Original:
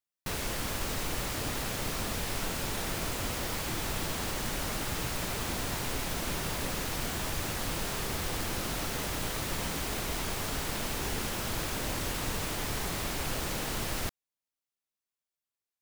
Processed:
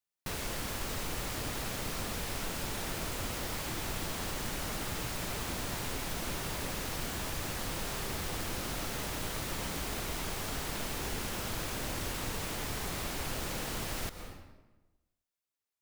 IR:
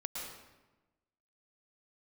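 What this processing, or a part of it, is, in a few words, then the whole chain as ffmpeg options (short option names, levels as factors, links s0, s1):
ducked reverb: -filter_complex "[0:a]asplit=3[s0][s1][s2];[1:a]atrim=start_sample=2205[s3];[s1][s3]afir=irnorm=-1:irlink=0[s4];[s2]apad=whole_len=697443[s5];[s4][s5]sidechaincompress=threshold=0.0112:ratio=8:attack=20:release=268,volume=0.891[s6];[s0][s6]amix=inputs=2:normalize=0,volume=0.562"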